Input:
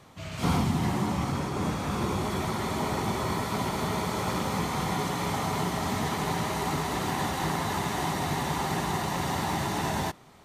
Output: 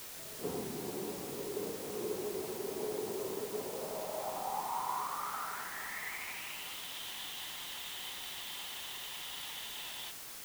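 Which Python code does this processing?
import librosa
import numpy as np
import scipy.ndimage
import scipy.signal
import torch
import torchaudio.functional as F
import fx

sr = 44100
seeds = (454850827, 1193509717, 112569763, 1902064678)

y = fx.filter_sweep_bandpass(x, sr, from_hz=430.0, to_hz=3200.0, start_s=3.55, end_s=6.8, q=5.5)
y = fx.quant_dither(y, sr, seeds[0], bits=8, dither='triangular')
y = F.gain(torch.from_numpy(y), 1.0).numpy()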